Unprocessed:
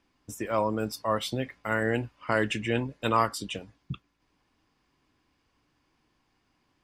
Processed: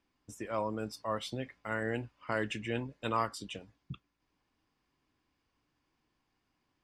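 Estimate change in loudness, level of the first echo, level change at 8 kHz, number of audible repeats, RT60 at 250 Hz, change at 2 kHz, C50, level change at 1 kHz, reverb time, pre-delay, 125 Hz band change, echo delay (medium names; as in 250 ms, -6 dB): -7.5 dB, no echo, -8.5 dB, no echo, no reverb, -7.5 dB, no reverb, -7.5 dB, no reverb, no reverb, -7.5 dB, no echo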